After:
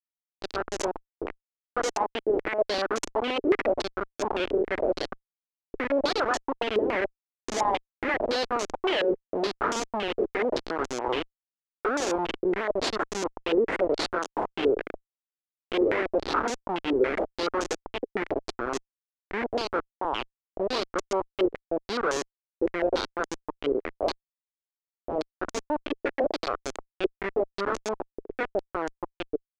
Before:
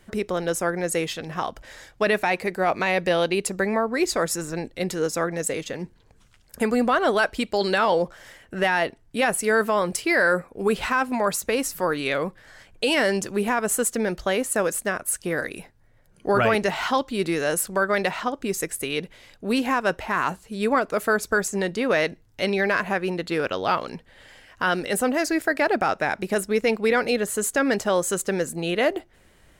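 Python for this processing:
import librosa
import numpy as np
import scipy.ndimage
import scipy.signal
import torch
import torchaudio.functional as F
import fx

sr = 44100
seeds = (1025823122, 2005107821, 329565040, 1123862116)

y = fx.doppler_pass(x, sr, speed_mps=42, closest_m=9.7, pass_at_s=9.16)
y = fx.recorder_agc(y, sr, target_db=-16.5, rise_db_per_s=57.0, max_gain_db=30)
y = fx.schmitt(y, sr, flips_db=-22.5)
y = fx.low_shelf_res(y, sr, hz=220.0, db=-13.5, q=1.5)
y = fx.filter_held_lowpass(y, sr, hz=7.1, low_hz=430.0, high_hz=6500.0)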